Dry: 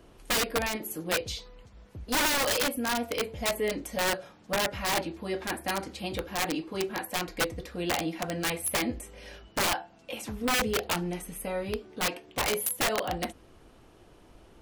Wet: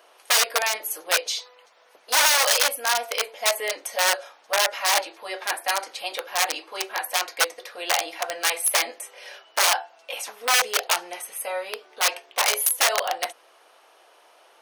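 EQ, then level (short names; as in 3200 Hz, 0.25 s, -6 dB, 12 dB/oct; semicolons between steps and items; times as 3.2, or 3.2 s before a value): HPF 580 Hz 24 dB/oct; notch 7400 Hz, Q 7.2; dynamic EQ 6900 Hz, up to +6 dB, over -47 dBFS, Q 1.2; +7.0 dB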